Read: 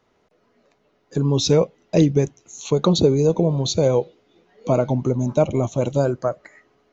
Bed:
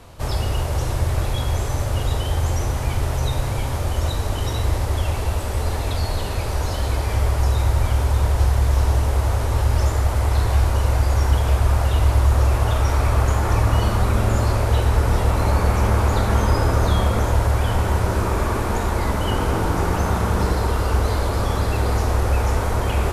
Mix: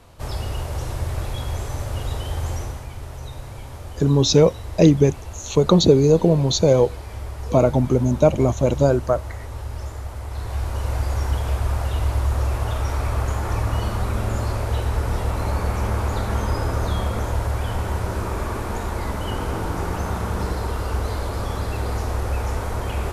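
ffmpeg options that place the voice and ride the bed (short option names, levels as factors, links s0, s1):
-filter_complex "[0:a]adelay=2850,volume=1.33[s0];[1:a]volume=1.33,afade=t=out:st=2.54:d=0.33:silence=0.421697,afade=t=in:st=10.28:d=0.7:silence=0.421697[s1];[s0][s1]amix=inputs=2:normalize=0"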